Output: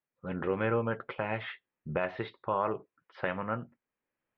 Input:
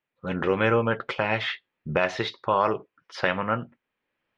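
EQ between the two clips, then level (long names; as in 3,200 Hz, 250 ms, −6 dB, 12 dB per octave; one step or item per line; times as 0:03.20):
high-frequency loss of the air 440 metres
−6.0 dB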